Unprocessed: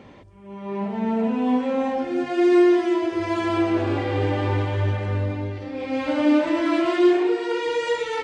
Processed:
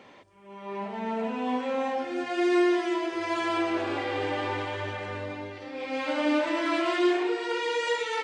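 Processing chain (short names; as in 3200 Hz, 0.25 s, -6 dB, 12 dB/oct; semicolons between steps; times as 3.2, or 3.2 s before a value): HPF 750 Hz 6 dB/oct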